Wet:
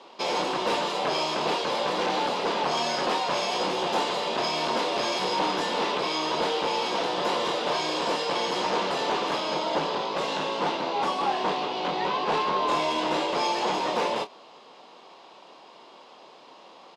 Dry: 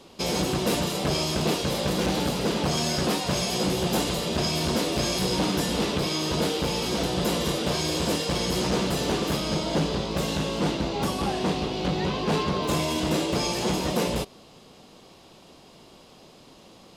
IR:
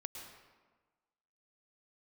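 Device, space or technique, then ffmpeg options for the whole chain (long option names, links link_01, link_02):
intercom: -filter_complex "[0:a]highpass=440,lowpass=4100,equalizer=frequency=950:width_type=o:width=0.57:gain=7,asoftclip=type=tanh:threshold=-18.5dB,asplit=2[link_01][link_02];[link_02]adelay=26,volume=-10.5dB[link_03];[link_01][link_03]amix=inputs=2:normalize=0,volume=2dB"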